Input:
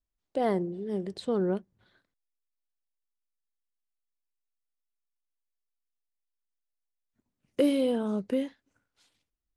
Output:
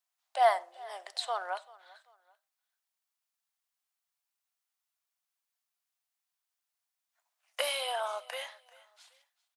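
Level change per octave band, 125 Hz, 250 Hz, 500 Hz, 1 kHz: under -40 dB, under -40 dB, -5.5 dB, +8.5 dB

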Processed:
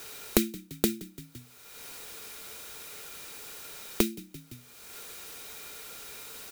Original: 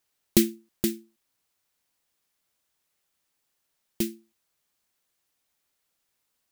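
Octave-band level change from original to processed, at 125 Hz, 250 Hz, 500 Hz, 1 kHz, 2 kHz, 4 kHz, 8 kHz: -3.0 dB, -3.5 dB, 0.0 dB, no reading, +4.5 dB, +1.0 dB, 0.0 dB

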